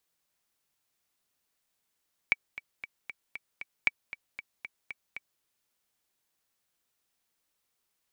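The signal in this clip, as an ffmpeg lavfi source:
-f lavfi -i "aevalsrc='pow(10,(-9.5-16*gte(mod(t,6*60/232),60/232))/20)*sin(2*PI*2290*mod(t,60/232))*exp(-6.91*mod(t,60/232)/0.03)':d=3.1:s=44100"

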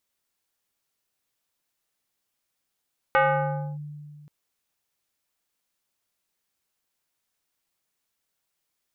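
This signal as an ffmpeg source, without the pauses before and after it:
-f lavfi -i "aevalsrc='0.178*pow(10,-3*t/2.16)*sin(2*PI*148*t+2.4*clip(1-t/0.63,0,1)*sin(2*PI*4.61*148*t))':d=1.13:s=44100"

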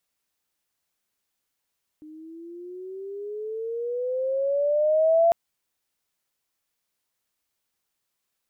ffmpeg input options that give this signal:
-f lavfi -i "aevalsrc='pow(10,(-14.5+26.5*(t/3.3-1))/20)*sin(2*PI*304*3.3/(14*log(2)/12)*(exp(14*log(2)/12*t/3.3)-1))':d=3.3:s=44100"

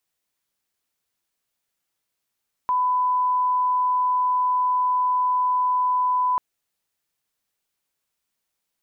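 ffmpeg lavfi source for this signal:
-f lavfi -i "sine=f=1000:d=3.69:r=44100,volume=0.06dB"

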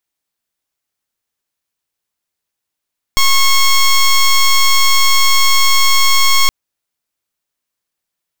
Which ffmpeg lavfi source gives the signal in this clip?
-f lavfi -i "aevalsrc='0.355*(2*lt(mod(1090*t,1),0.1)-1)':d=3.32:s=44100"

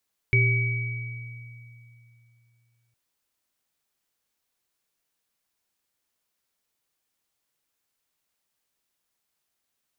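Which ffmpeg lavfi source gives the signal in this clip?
-f lavfi -i "aevalsrc='0.126*pow(10,-3*t/3.01)*sin(2*PI*118*t)+0.0355*pow(10,-3*t/1.4)*sin(2*PI*390*t)+0.112*pow(10,-3*t/2.37)*sin(2*PI*2270*t)':d=2.61:s=44100"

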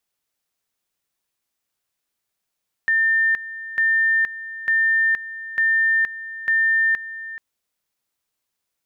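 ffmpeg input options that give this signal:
-f lavfi -i "aevalsrc='pow(10,(-15-15*gte(mod(t,0.9),0.47))/20)*sin(2*PI*1800*t)':d=4.5:s=44100"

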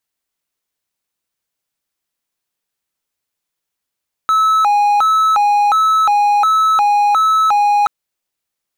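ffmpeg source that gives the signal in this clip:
-f lavfi -i "aevalsrc='0.422*(1-4*abs(mod((1062*t+238/1.4*(0.5-abs(mod(1.4*t,1)-0.5)))+0.25,1)-0.5))':d=3.58:s=44100"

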